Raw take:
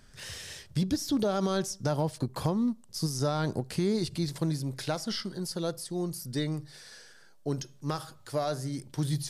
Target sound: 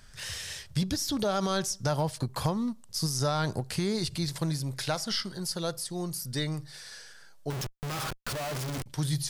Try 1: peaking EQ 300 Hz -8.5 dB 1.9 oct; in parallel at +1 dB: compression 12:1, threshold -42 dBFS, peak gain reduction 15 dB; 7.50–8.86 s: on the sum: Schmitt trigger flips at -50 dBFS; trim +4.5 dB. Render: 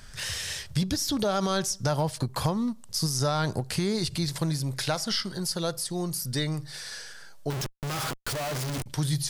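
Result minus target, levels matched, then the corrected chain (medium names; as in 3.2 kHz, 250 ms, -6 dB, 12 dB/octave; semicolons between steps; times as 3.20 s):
compression: peak gain reduction +15 dB
peaking EQ 300 Hz -8.5 dB 1.9 oct; 7.50–8.86 s: Schmitt trigger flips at -50 dBFS; trim +4.5 dB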